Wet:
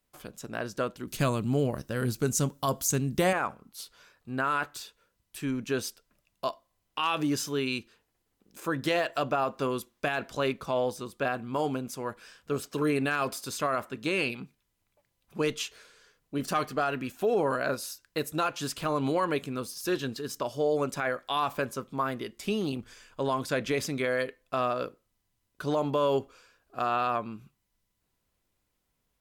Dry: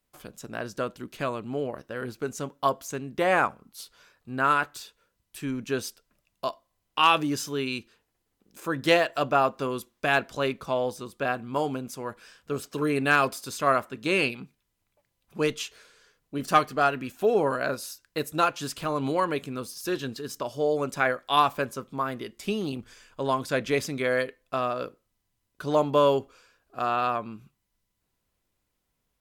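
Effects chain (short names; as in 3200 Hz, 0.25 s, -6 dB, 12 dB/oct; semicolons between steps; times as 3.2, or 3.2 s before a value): limiter -18 dBFS, peak gain reduction 9.5 dB; 1.07–3.33 tone controls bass +12 dB, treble +13 dB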